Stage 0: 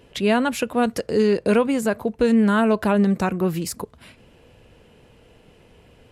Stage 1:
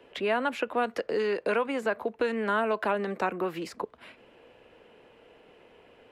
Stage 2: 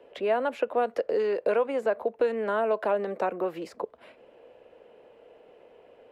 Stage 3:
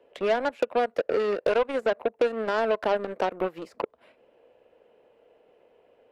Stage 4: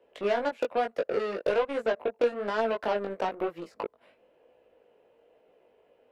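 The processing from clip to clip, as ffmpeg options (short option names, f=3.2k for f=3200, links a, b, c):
-filter_complex "[0:a]acrossover=split=280 3300:gain=0.126 1 0.2[a][b][c];[a][b][c]amix=inputs=3:normalize=0,acrossover=split=260|780|2100|6500[d][e][f][g][h];[d]acompressor=threshold=-42dB:ratio=4[i];[e]acompressor=threshold=-30dB:ratio=4[j];[f]acompressor=threshold=-28dB:ratio=4[k];[g]acompressor=threshold=-40dB:ratio=4[l];[h]acompressor=threshold=-59dB:ratio=4[m];[i][j][k][l][m]amix=inputs=5:normalize=0"
-af "equalizer=f=560:w=1.1:g=12,volume=-6.5dB"
-filter_complex "[0:a]asplit=2[a][b];[b]acompressor=threshold=-33dB:ratio=6,volume=2dB[c];[a][c]amix=inputs=2:normalize=0,aeval=exprs='0.251*(cos(1*acos(clip(val(0)/0.251,-1,1)))-cos(1*PI/2))+0.0112*(cos(3*acos(clip(val(0)/0.251,-1,1)))-cos(3*PI/2))+0.0224*(cos(7*acos(clip(val(0)/0.251,-1,1)))-cos(7*PI/2))':c=same,volume=-1dB"
-af "flanger=delay=17.5:depth=3.3:speed=1.1"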